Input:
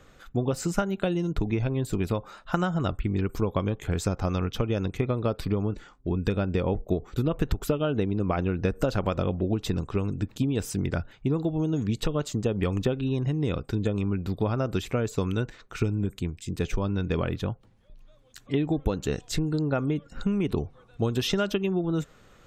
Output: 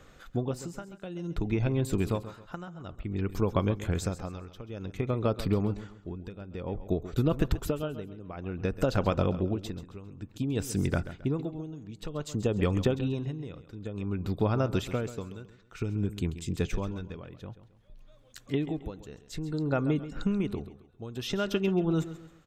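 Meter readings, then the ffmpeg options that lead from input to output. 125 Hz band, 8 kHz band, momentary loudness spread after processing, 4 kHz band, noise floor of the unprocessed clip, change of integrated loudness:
-3.5 dB, -4.5 dB, 15 LU, -5.0 dB, -56 dBFS, -3.5 dB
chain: -filter_complex "[0:a]tremolo=f=0.55:d=0.87,asplit=2[a][b];[b]aecho=0:1:134|268|402:0.211|0.0719|0.0244[c];[a][c]amix=inputs=2:normalize=0"

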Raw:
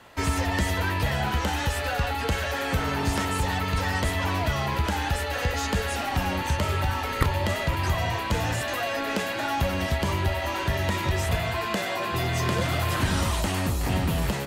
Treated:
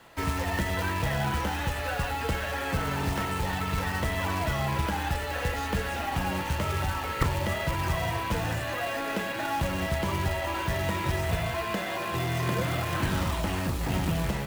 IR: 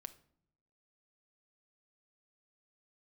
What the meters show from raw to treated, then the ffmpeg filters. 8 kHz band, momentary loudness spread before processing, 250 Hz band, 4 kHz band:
-5.0 dB, 2 LU, -2.5 dB, -4.5 dB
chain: -filter_complex "[0:a]acrossover=split=3400[a][b];[b]acompressor=threshold=-45dB:ratio=4:attack=1:release=60[c];[a][c]amix=inputs=2:normalize=0,acrusher=bits=3:mode=log:mix=0:aa=0.000001[d];[1:a]atrim=start_sample=2205[e];[d][e]afir=irnorm=-1:irlink=0,volume=2.5dB"

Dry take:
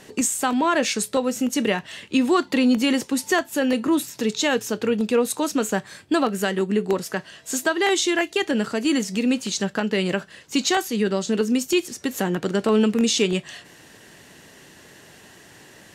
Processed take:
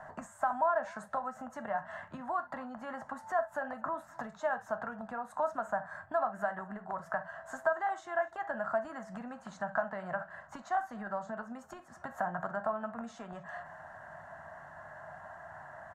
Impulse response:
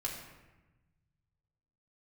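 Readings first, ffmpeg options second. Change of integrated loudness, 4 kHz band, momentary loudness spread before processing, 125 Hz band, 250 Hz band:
-14.5 dB, under -30 dB, 7 LU, -18.5 dB, -24.5 dB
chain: -filter_complex "[0:a]acompressor=threshold=-28dB:ratio=6,asplit=2[a][b];[1:a]atrim=start_sample=2205,atrim=end_sample=3087,highshelf=f=9.1k:g=-10[c];[b][c]afir=irnorm=-1:irlink=0,volume=-3dB[d];[a][d]amix=inputs=2:normalize=0,acrossover=split=330|3000[e][f][g];[f]acompressor=threshold=-27dB:ratio=6[h];[e][h][g]amix=inputs=3:normalize=0,firequalizer=gain_entry='entry(160,0);entry(300,-17);entry(440,-17);entry(640,14);entry(910,11);entry(1600,8);entry(2400,-20);entry(4900,-23);entry(7000,-18);entry(13000,-24)':delay=0.05:min_phase=1,aecho=1:1:249:0.0668,volume=-8.5dB"

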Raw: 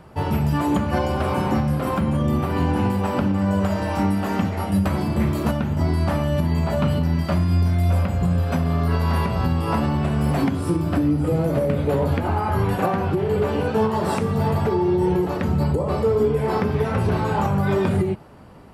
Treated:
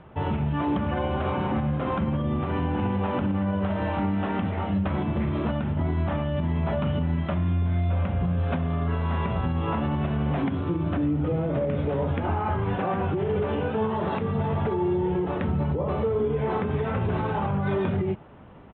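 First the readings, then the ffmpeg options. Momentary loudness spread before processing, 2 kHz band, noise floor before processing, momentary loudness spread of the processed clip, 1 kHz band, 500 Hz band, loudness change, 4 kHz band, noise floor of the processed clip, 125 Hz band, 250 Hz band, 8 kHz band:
2 LU, -4.5 dB, -26 dBFS, 2 LU, -4.5 dB, -5.0 dB, -5.0 dB, -6.5 dB, -29 dBFS, -5.0 dB, -5.0 dB, under -35 dB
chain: -af "alimiter=limit=-15dB:level=0:latency=1:release=69,aresample=8000,aresample=44100,volume=-2.5dB"

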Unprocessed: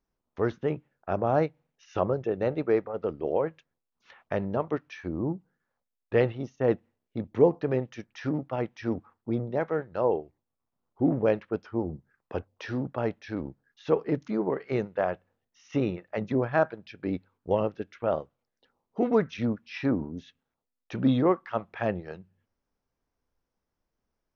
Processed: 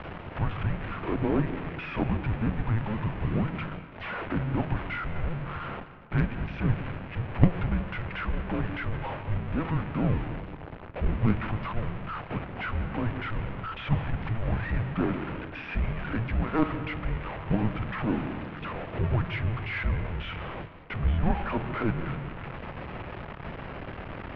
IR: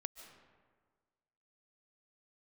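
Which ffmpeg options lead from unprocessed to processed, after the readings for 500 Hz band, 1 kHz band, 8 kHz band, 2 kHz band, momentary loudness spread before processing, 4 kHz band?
-9.5 dB, -0.5 dB, n/a, +5.0 dB, 12 LU, +4.5 dB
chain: -filter_complex "[0:a]aeval=exprs='val(0)+0.5*0.0562*sgn(val(0))':c=same,asplit=2[a][b];[1:a]atrim=start_sample=2205[c];[b][c]afir=irnorm=-1:irlink=0,volume=8.5dB[d];[a][d]amix=inputs=2:normalize=0,highpass=f=170:t=q:w=0.5412,highpass=f=170:t=q:w=1.307,lowpass=f=3.1k:t=q:w=0.5176,lowpass=f=3.1k:t=q:w=0.7071,lowpass=f=3.1k:t=q:w=1.932,afreqshift=-330,aeval=exprs='1.19*(cos(1*acos(clip(val(0)/1.19,-1,1)))-cos(1*PI/2))+0.266*(cos(2*acos(clip(val(0)/1.19,-1,1)))-cos(2*PI/2))+0.335*(cos(3*acos(clip(val(0)/1.19,-1,1)))-cos(3*PI/2))+0.119*(cos(5*acos(clip(val(0)/1.19,-1,1)))-cos(5*PI/2))':c=same,volume=-7.5dB"

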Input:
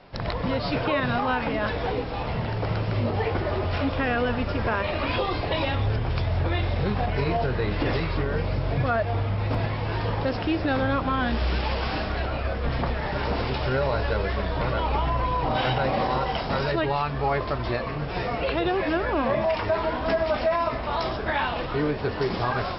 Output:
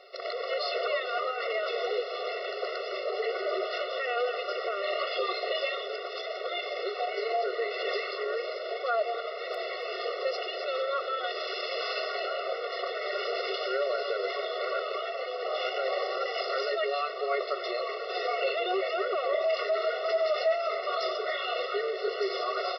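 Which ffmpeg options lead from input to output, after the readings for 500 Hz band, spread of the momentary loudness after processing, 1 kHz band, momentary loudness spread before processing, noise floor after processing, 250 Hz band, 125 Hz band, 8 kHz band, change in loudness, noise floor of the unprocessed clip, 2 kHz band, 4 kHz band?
-2.0 dB, 5 LU, -6.0 dB, 4 LU, -37 dBFS, under -15 dB, under -40 dB, n/a, -5.0 dB, -30 dBFS, -4.5 dB, 0.0 dB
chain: -filter_complex "[0:a]highshelf=f=3.7k:g=10.5,alimiter=limit=-18dB:level=0:latency=1:release=29,asplit=2[a][b];[b]aecho=0:1:277:0.2[c];[a][c]amix=inputs=2:normalize=0,afftfilt=real='re*eq(mod(floor(b*sr/1024/370),2),1)':imag='im*eq(mod(floor(b*sr/1024/370),2),1)':win_size=1024:overlap=0.75"

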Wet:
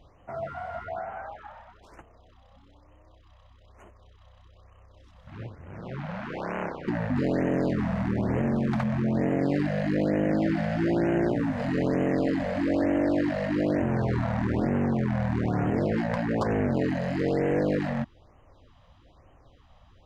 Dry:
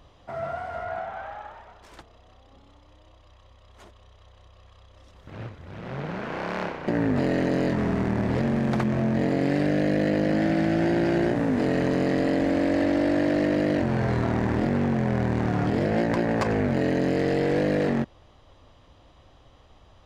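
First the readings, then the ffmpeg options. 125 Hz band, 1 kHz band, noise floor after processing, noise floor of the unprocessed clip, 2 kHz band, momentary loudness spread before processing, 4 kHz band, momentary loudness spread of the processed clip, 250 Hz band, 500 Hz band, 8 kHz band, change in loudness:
-1.5 dB, -2.5 dB, -57 dBFS, -55 dBFS, -3.5 dB, 11 LU, -6.5 dB, 12 LU, -2.5 dB, -3.0 dB, n/a, -2.5 dB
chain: -af "highshelf=f=4k:g=-7.5,afftfilt=real='re*(1-between(b*sr/1024,320*pow(4500/320,0.5+0.5*sin(2*PI*1.1*pts/sr))/1.41,320*pow(4500/320,0.5+0.5*sin(2*PI*1.1*pts/sr))*1.41))':imag='im*(1-between(b*sr/1024,320*pow(4500/320,0.5+0.5*sin(2*PI*1.1*pts/sr))/1.41,320*pow(4500/320,0.5+0.5*sin(2*PI*1.1*pts/sr))*1.41))':win_size=1024:overlap=0.75,volume=-1.5dB"

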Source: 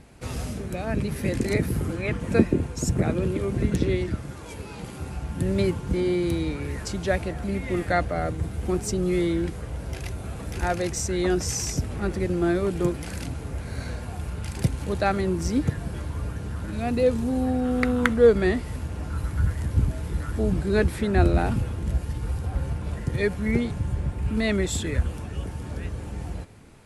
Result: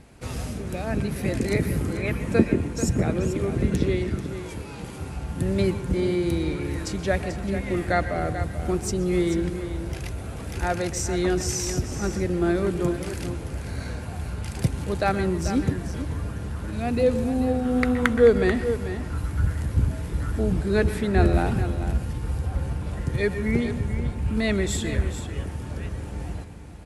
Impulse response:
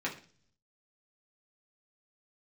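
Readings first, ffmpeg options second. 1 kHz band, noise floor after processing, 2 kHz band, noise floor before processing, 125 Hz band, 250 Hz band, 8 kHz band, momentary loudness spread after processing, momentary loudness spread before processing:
+0.5 dB, -35 dBFS, +0.5 dB, -38 dBFS, +0.5 dB, +0.5 dB, +0.5 dB, 11 LU, 11 LU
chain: -filter_complex "[0:a]aecho=1:1:438:0.299,asplit=2[a][b];[1:a]atrim=start_sample=2205,adelay=120[c];[b][c]afir=irnorm=-1:irlink=0,volume=-17.5dB[d];[a][d]amix=inputs=2:normalize=0"

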